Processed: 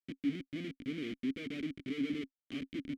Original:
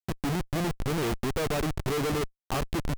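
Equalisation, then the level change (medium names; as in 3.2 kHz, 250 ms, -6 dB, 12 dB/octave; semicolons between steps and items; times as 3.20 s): vowel filter i; +2.0 dB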